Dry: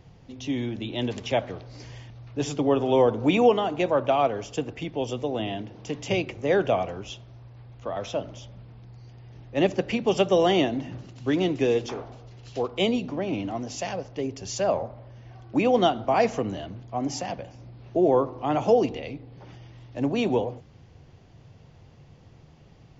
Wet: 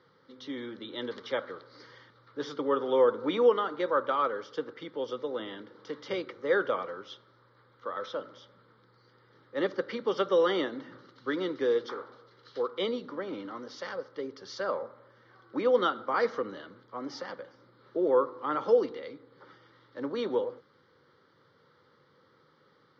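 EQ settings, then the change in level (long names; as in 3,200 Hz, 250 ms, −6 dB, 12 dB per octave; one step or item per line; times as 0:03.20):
high-frequency loss of the air 140 metres
loudspeaker in its box 430–5,700 Hz, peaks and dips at 510 Hz +8 dB, 720 Hz +5 dB, 1,300 Hz +9 dB, 4,100 Hz +3 dB
phaser with its sweep stopped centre 2,600 Hz, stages 6
0.0 dB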